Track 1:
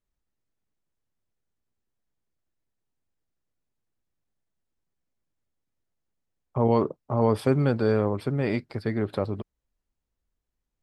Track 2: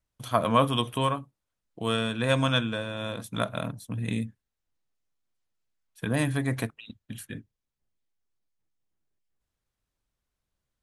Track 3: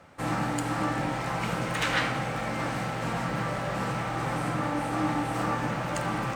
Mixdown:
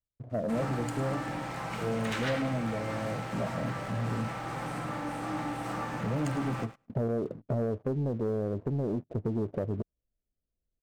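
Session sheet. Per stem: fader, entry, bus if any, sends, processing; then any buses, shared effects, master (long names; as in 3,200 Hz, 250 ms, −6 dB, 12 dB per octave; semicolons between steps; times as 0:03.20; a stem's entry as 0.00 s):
+0.5 dB, 0.40 s, bus A, no send, no echo send, no processing
−3.5 dB, 0.00 s, bus A, no send, no echo send, flanger 0.5 Hz, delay 1.1 ms, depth 6.9 ms, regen −62%
−14.0 dB, 0.30 s, no bus, no send, echo send −13 dB, no processing
bus A: 0.0 dB, Chebyshev low-pass filter 690 Hz, order 6; downward compressor 12 to 1, threshold −32 dBFS, peak gain reduction 16 dB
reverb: not used
echo: repeating echo 106 ms, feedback 19%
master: leveller curve on the samples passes 2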